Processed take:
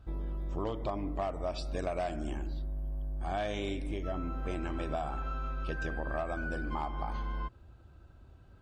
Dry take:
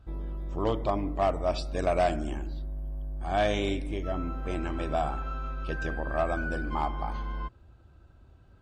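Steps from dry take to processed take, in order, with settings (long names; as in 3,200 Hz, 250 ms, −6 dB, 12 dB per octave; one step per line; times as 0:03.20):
downward compressor, threshold −31 dBFS, peak gain reduction 10 dB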